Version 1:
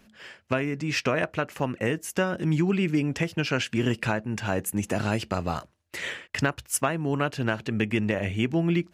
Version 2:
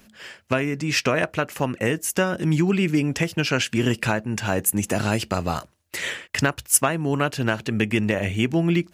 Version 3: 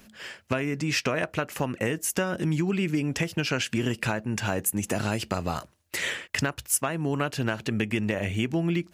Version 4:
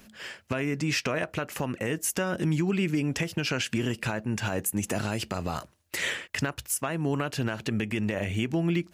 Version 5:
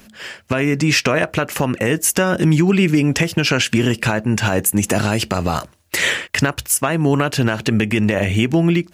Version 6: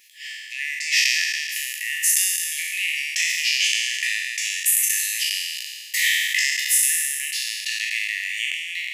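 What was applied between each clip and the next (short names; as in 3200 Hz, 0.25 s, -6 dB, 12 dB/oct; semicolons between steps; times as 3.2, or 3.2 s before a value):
high shelf 6100 Hz +9 dB; gain +3.5 dB
compressor 2.5:1, threshold -25 dBFS, peak gain reduction 9.5 dB
limiter -17.5 dBFS, peak gain reduction 7.5 dB
AGC gain up to 4.5 dB; gain +7.5 dB
spectral trails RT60 2.09 s; brick-wall FIR high-pass 1700 Hz; gain -5 dB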